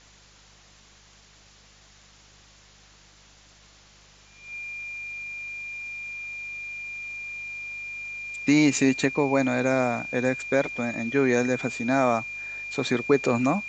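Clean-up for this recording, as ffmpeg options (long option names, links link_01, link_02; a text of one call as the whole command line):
ffmpeg -i in.wav -af "bandreject=frequency=50.4:width_type=h:width=4,bandreject=frequency=100.8:width_type=h:width=4,bandreject=frequency=151.2:width_type=h:width=4,bandreject=frequency=201.6:width_type=h:width=4,bandreject=frequency=2400:width=30,afwtdn=0.0028" out.wav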